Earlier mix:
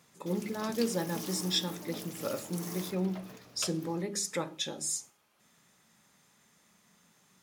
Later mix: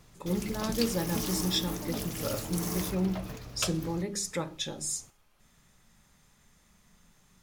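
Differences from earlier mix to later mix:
background +6.5 dB
master: remove high-pass filter 190 Hz 12 dB per octave

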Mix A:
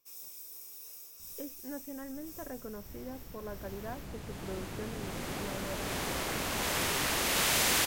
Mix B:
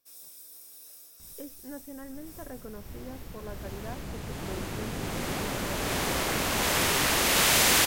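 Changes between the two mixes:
first sound: remove EQ curve with evenly spaced ripples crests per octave 0.75, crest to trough 7 dB
second sound +6.0 dB

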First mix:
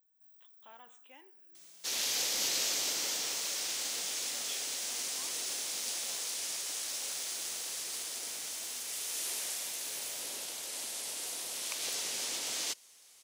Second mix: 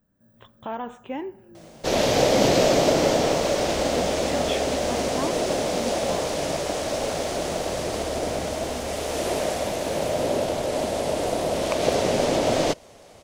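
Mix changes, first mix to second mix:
speech +5.0 dB
second sound: add parametric band 620 Hz +11 dB 0.62 octaves
master: remove first difference

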